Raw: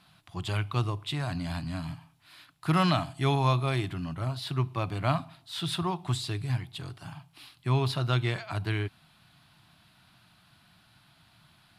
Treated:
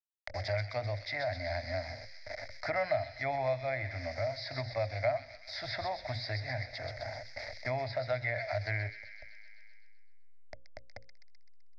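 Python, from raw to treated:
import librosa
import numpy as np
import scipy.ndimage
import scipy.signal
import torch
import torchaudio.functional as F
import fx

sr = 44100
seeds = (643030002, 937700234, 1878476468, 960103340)

p1 = fx.delta_hold(x, sr, step_db=-43.5)
p2 = fx.hum_notches(p1, sr, base_hz=60, count=9)
p3 = fx.env_lowpass_down(p2, sr, base_hz=2100.0, full_db=-24.5)
p4 = fx.curve_eq(p3, sr, hz=(110.0, 160.0, 240.0, 380.0, 610.0, 1100.0, 2100.0, 2900.0, 5000.0, 8900.0), db=(0, -28, -8, -19, 15, -15, 14, -21, 13, -30))
p5 = p4 + fx.echo_wet_highpass(p4, sr, ms=128, feedback_pct=53, hz=3000.0, wet_db=-4.5, dry=0)
p6 = fx.band_squash(p5, sr, depth_pct=70)
y = p6 * librosa.db_to_amplitude(-4.0)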